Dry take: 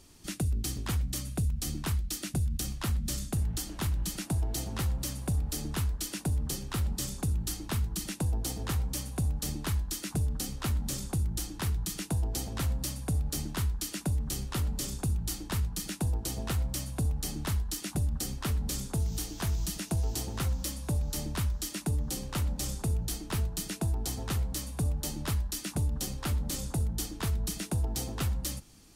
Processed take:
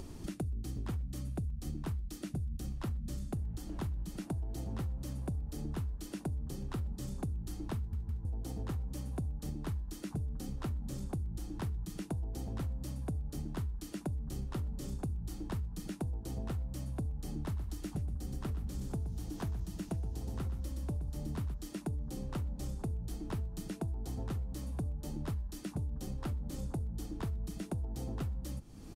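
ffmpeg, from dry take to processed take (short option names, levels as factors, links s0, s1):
-filter_complex "[0:a]asplit=3[s0][s1][s2];[s0]afade=t=out:st=17.55:d=0.02[s3];[s1]aecho=1:1:122|244|366:0.447|0.116|0.0302,afade=t=in:st=17.55:d=0.02,afade=t=out:st=21.53:d=0.02[s4];[s2]afade=t=in:st=21.53:d=0.02[s5];[s3][s4][s5]amix=inputs=3:normalize=0,asplit=4[s6][s7][s8][s9];[s6]atrim=end=7.932[s10];[s7]atrim=start=7.768:end=7.932[s11];[s8]atrim=start=7.768:end=7.932[s12];[s9]atrim=start=8.248[s13];[s10][s11]acrossfade=d=0.004:c1=hsin:c2=hsin[s14];[s14][s12]acrossfade=d=0.004:c1=hsin:c2=hsin[s15];[s15][s13]acrossfade=d=0.004:c1=hsin:c2=hsin,acompressor=mode=upward:threshold=0.0224:ratio=2.5,tiltshelf=f=1200:g=7.5,acompressor=threshold=0.0398:ratio=6,volume=0.473"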